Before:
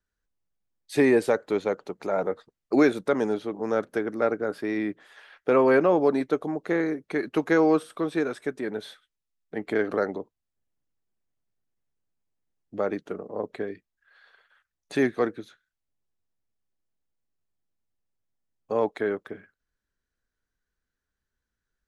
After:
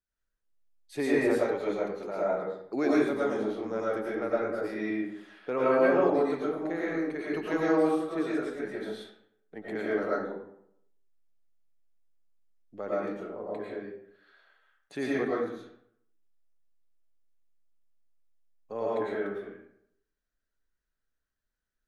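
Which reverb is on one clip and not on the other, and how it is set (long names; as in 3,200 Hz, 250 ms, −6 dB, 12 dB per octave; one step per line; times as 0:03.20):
comb and all-pass reverb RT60 0.71 s, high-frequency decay 0.65×, pre-delay 70 ms, DRR −7 dB
level −11 dB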